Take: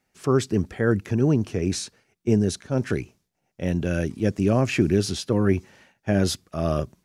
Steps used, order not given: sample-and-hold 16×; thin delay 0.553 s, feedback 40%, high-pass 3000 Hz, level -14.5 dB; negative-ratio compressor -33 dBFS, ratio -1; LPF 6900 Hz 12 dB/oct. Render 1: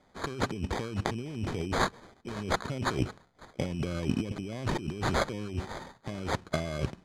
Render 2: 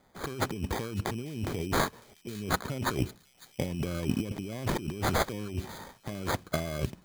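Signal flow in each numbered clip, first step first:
negative-ratio compressor > thin delay > sample-and-hold > LPF; LPF > negative-ratio compressor > sample-and-hold > thin delay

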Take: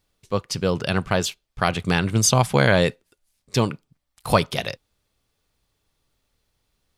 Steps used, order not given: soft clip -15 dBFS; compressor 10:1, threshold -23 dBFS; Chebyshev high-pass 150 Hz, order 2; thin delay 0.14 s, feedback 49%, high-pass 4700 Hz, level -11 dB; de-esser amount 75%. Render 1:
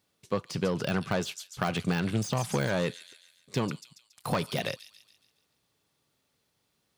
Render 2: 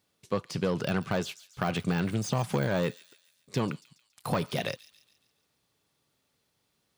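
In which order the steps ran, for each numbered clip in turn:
thin delay > soft clip > Chebyshev high-pass > compressor > de-esser; soft clip > de-esser > thin delay > compressor > Chebyshev high-pass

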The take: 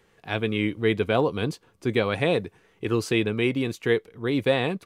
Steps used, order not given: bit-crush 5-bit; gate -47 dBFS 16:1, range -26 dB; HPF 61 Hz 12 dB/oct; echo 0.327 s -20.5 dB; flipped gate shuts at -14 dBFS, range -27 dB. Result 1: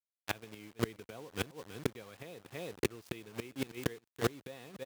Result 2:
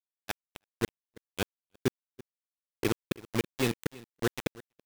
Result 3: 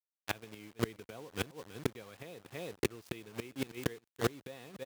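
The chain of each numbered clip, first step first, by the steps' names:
bit-crush > gate > echo > flipped gate > HPF; flipped gate > HPF > bit-crush > echo > gate; bit-crush > echo > gate > flipped gate > HPF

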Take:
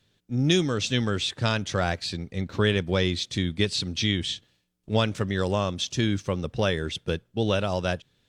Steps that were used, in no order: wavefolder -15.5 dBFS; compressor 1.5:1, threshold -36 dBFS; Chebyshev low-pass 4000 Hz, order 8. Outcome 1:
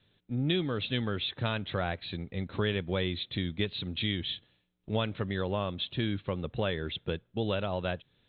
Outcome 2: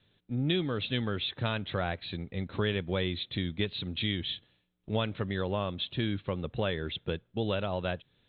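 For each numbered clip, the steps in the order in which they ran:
compressor > Chebyshev low-pass > wavefolder; compressor > wavefolder > Chebyshev low-pass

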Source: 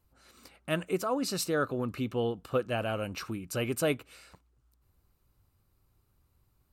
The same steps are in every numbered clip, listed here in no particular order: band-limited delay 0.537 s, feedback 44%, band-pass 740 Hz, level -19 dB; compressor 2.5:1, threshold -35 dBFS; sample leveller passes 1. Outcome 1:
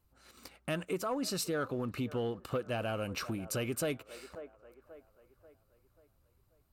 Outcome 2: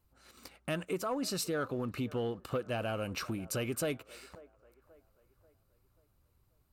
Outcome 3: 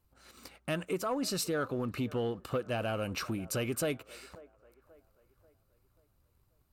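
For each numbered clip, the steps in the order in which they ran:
sample leveller > band-limited delay > compressor; sample leveller > compressor > band-limited delay; compressor > sample leveller > band-limited delay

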